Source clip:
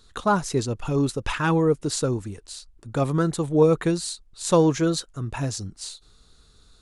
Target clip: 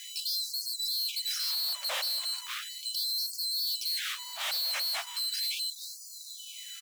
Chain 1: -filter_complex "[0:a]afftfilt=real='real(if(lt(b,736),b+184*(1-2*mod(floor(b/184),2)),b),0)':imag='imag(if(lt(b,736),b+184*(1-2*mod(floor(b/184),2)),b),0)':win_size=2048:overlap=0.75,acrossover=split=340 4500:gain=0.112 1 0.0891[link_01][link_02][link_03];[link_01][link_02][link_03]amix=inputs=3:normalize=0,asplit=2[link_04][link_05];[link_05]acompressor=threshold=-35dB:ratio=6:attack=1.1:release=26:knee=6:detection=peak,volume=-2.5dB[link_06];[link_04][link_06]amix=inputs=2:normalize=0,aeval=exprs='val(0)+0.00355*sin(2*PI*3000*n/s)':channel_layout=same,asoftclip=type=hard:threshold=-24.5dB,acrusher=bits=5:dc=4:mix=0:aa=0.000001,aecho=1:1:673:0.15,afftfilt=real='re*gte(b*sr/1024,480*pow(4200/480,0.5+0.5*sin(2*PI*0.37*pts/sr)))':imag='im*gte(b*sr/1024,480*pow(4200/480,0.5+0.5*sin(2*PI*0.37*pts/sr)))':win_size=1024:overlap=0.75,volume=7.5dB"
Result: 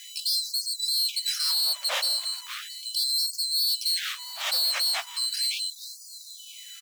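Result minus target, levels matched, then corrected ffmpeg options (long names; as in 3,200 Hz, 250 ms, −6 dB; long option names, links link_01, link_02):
hard clipping: distortion −5 dB
-filter_complex "[0:a]afftfilt=real='real(if(lt(b,736),b+184*(1-2*mod(floor(b/184),2)),b),0)':imag='imag(if(lt(b,736),b+184*(1-2*mod(floor(b/184),2)),b),0)':win_size=2048:overlap=0.75,acrossover=split=340 4500:gain=0.112 1 0.0891[link_01][link_02][link_03];[link_01][link_02][link_03]amix=inputs=3:normalize=0,asplit=2[link_04][link_05];[link_05]acompressor=threshold=-35dB:ratio=6:attack=1.1:release=26:knee=6:detection=peak,volume=-2.5dB[link_06];[link_04][link_06]amix=inputs=2:normalize=0,aeval=exprs='val(0)+0.00355*sin(2*PI*3000*n/s)':channel_layout=same,asoftclip=type=hard:threshold=-33dB,acrusher=bits=5:dc=4:mix=0:aa=0.000001,aecho=1:1:673:0.15,afftfilt=real='re*gte(b*sr/1024,480*pow(4200/480,0.5+0.5*sin(2*PI*0.37*pts/sr)))':imag='im*gte(b*sr/1024,480*pow(4200/480,0.5+0.5*sin(2*PI*0.37*pts/sr)))':win_size=1024:overlap=0.75,volume=7.5dB"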